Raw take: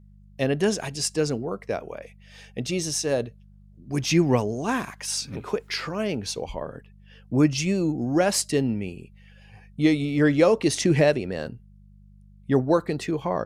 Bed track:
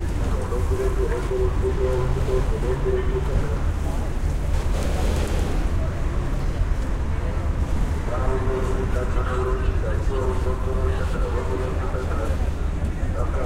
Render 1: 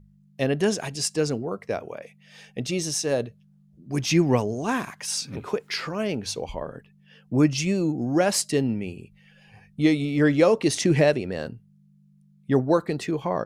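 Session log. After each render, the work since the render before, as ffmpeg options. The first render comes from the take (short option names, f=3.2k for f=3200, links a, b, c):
-af "bandreject=f=50:t=h:w=4,bandreject=f=100:t=h:w=4"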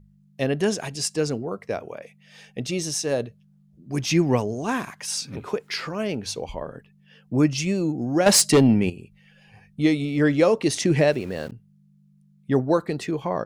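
-filter_complex "[0:a]asettb=1/sr,asplit=3[a][b][c];[a]atrim=end=8.264[d];[b]atrim=start=8.26:end=8.9,asetpts=PTS-STARTPTS,afade=t=in:d=0.004:c=qsin,afade=t=out:st=0.636:d=0.004:c=qsin,aeval=exprs='0.316*sin(PI/2*2*val(0)/0.316)':c=same[e];[c]atrim=start=8.896[f];[d][e]acrossfade=d=0.004:c1=hsin:c2=qsin[g];[g][f]acrossfade=d=0.004:c1=qsin:c2=hsin,asettb=1/sr,asplit=3[h][i][j];[h]atrim=end=11.124[k];[i]atrim=start=11.12:end=11.52,asetpts=PTS-STARTPTS,afade=t=in:d=0.004:c=qsin,afade=t=out:st=0.396:d=0.004:c=qsin,aeval=exprs='val(0)*gte(abs(val(0)),0.0075)':c=same[l];[j]atrim=start=11.516[m];[k][l]acrossfade=d=0.004:c1=hsin:c2=qsin[n];[n][m]acrossfade=d=0.004:c1=qsin:c2=hsin"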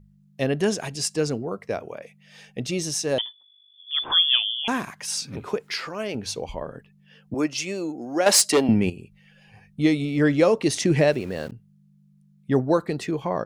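-filter_complex "[0:a]asettb=1/sr,asplit=3[a][b][c];[a]atrim=end=3.184[d];[b]atrim=start=3.18:end=4.68,asetpts=PTS-STARTPTS,afade=t=in:d=0.004:c=qsin,afade=t=out:st=1.496:d=0.004:c=qsin,lowpass=f=3.1k:t=q:w=0.5098,lowpass=f=3.1k:t=q:w=0.6013,lowpass=f=3.1k:t=q:w=0.9,lowpass=f=3.1k:t=q:w=2.563,afreqshift=-3600[e];[c]atrim=start=4.676[f];[d][e]acrossfade=d=0.004:c1=hsin:c2=qsin[g];[g][f]acrossfade=d=0.004:c1=qsin:c2=hsin,asettb=1/sr,asplit=3[h][i][j];[h]atrim=end=5.734[k];[i]atrim=start=5.73:end=6.15,asetpts=PTS-STARTPTS,afade=t=in:d=0.004:c=qsin,afade=t=out:st=0.416:d=0.004:c=qsin,equalizer=f=97:t=o:w=2.6:g=-11.5[l];[j]atrim=start=6.146[m];[k][l]acrossfade=d=0.004:c1=hsin:c2=qsin[n];[n][m]acrossfade=d=0.004:c1=qsin:c2=hsin,asettb=1/sr,asplit=3[o][p][q];[o]atrim=end=7.344[r];[p]atrim=start=7.34:end=8.69,asetpts=PTS-STARTPTS,afade=t=in:d=0.004:c=qsin,afade=t=out:st=1.346:d=0.004:c=qsin,highpass=370[s];[q]atrim=start=8.686[t];[r][s]acrossfade=d=0.004:c1=hsin:c2=qsin[u];[u][t]acrossfade=d=0.004:c1=qsin:c2=hsin"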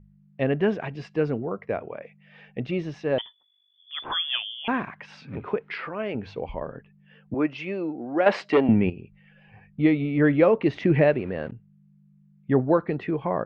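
-af "lowpass=f=2.6k:w=0.5412,lowpass=f=2.6k:w=1.3066"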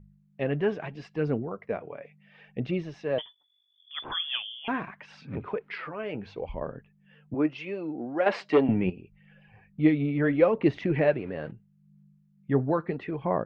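-af "flanger=delay=0:depth=7.2:regen=47:speed=0.75:shape=sinusoidal"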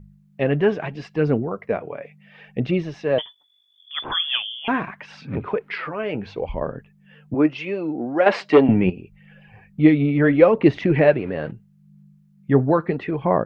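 -af "volume=8dB,alimiter=limit=-2dB:level=0:latency=1"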